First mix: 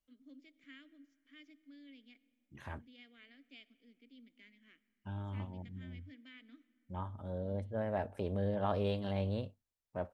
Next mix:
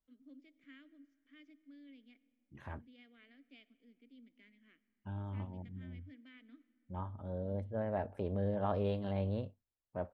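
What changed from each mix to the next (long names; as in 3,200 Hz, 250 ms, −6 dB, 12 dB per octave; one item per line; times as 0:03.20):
master: add high-shelf EQ 2,800 Hz −11 dB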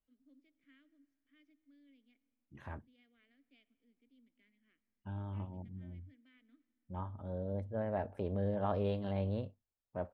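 first voice −9.0 dB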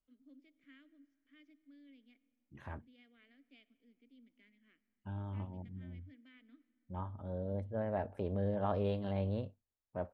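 first voice +5.5 dB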